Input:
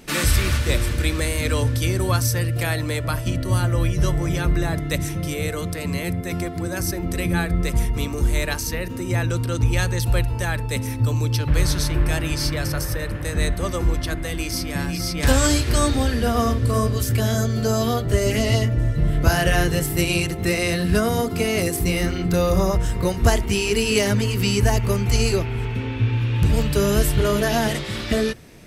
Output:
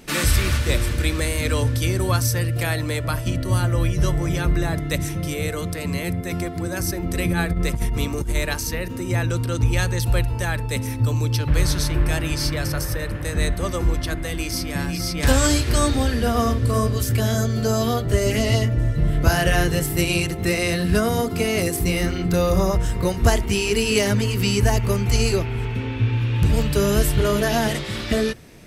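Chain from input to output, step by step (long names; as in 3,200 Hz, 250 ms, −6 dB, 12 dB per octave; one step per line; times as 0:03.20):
0:07.14–0:08.35: compressor whose output falls as the input rises −20 dBFS, ratio −0.5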